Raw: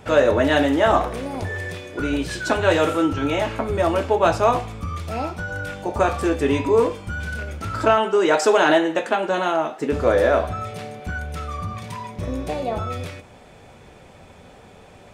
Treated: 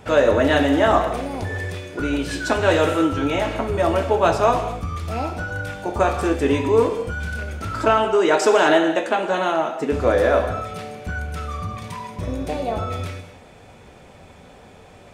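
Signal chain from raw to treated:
reverb whose tail is shaped and stops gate 250 ms flat, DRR 8.5 dB

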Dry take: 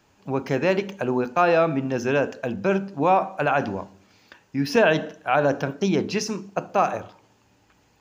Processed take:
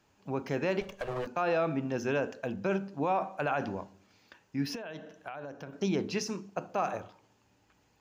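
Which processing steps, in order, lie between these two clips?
0:00.81–0:01.27: lower of the sound and its delayed copy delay 1.8 ms
brickwall limiter −12.5 dBFS, peak gain reduction 5.5 dB
0:04.74–0:05.73: downward compressor 10 to 1, threshold −31 dBFS, peak gain reduction 14 dB
level −7.5 dB

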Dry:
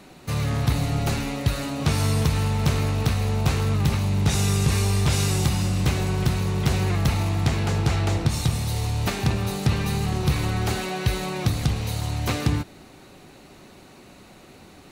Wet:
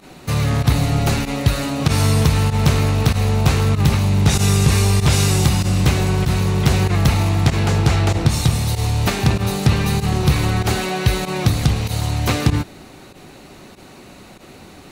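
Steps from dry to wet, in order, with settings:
fake sidechain pumping 96 BPM, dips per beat 1, −16 dB, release 62 ms
level +6.5 dB

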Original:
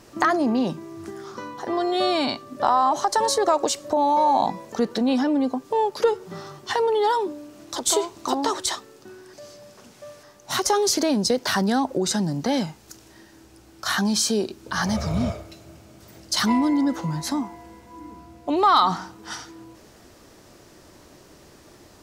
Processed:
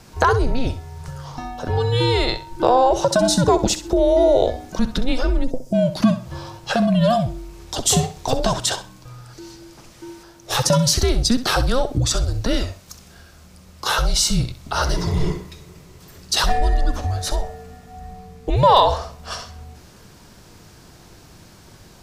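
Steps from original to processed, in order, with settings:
frequency shifter −250 Hz
gain on a spectral selection 0:05.44–0:05.74, 710–4,700 Hz −13 dB
flutter between parallel walls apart 11.1 metres, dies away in 0.3 s
level +4 dB

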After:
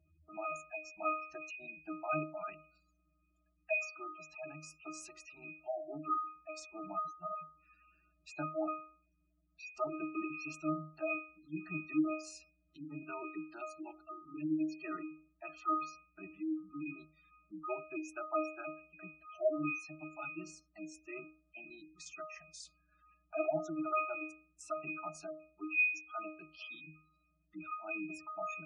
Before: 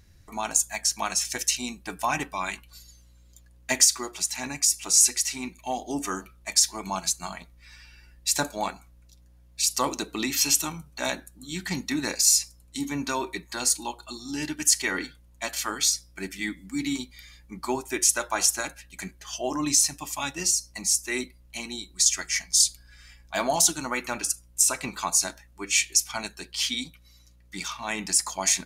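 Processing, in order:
high-pass filter 690 Hz 6 dB per octave
resonances in every octave D#, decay 0.42 s
gate on every frequency bin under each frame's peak −20 dB strong
level +14.5 dB

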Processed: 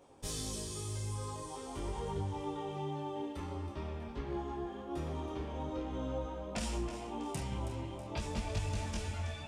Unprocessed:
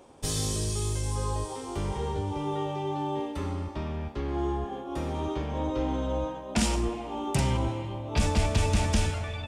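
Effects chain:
downward compressor, threshold −27 dBFS, peak gain reduction 8.5 dB
echo with a time of its own for lows and highs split 410 Hz, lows 168 ms, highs 323 ms, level −11 dB
micro pitch shift up and down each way 16 cents
level −3.5 dB

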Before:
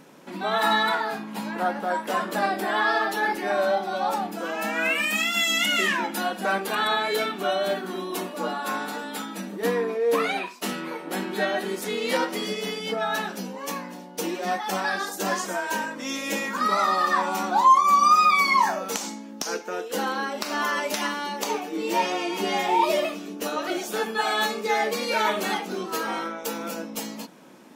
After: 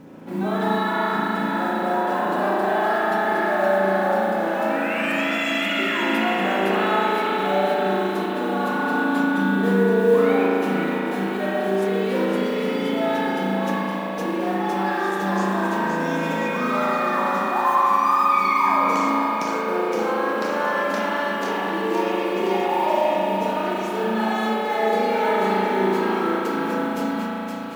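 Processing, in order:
high-pass filter 130 Hz 6 dB per octave
spectral tilt −3.5 dB per octave
in parallel at −2.5 dB: compressor whose output falls as the input rises −30 dBFS
on the sum: noise that follows the level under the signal 26 dB
on a send: feedback echo with a high-pass in the loop 517 ms, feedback 62%, high-pass 1,000 Hz, level −5 dB
on the sum: spring reverb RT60 3.7 s, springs 36 ms, chirp 35 ms, DRR −6 dB
level −7 dB

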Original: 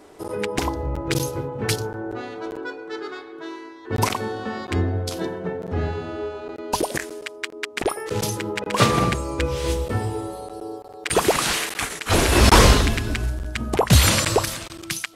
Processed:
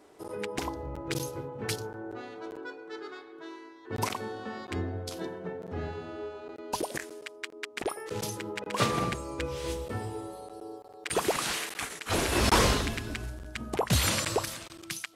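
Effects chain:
low-shelf EQ 77 Hz −8.5 dB
level −9 dB

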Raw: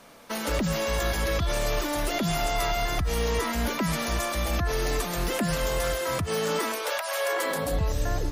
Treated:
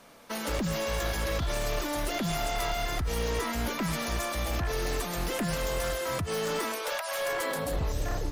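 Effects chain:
wavefolder on the positive side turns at −22.5 dBFS
level −3 dB

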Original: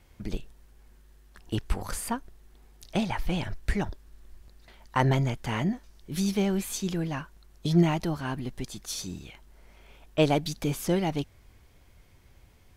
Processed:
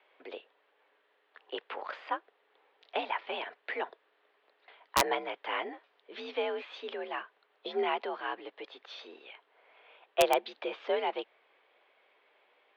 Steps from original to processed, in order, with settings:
single-sideband voice off tune +57 Hz 390–3,400 Hz
wrap-around overflow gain 13.5 dB

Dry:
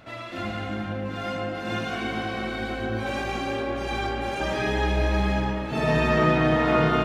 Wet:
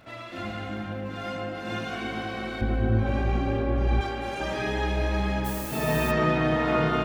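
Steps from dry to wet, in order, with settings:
0:02.61–0:04.01: RIAA equalisation playback
surface crackle 160 per second −51 dBFS
0:05.44–0:06.10: background noise blue −36 dBFS
level −3 dB

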